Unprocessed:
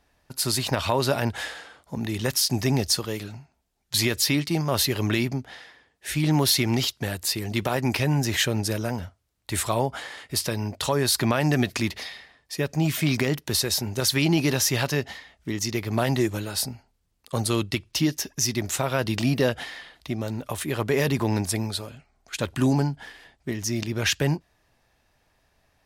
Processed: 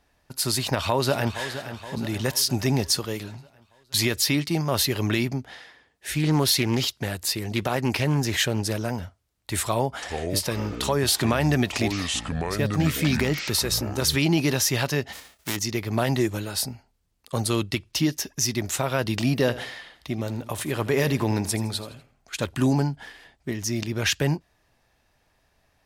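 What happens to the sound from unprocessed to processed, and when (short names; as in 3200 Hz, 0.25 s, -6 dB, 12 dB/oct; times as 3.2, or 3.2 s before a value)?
0.6–1.48 echo throw 0.47 s, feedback 55%, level -11.5 dB
6.18–8.88 Doppler distortion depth 0.2 ms
9.62–14.16 echoes that change speed 0.404 s, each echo -6 st, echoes 2, each echo -6 dB
15.12–15.55 spectral whitening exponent 0.3
19.39–22.47 feedback echo 81 ms, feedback 39%, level -15.5 dB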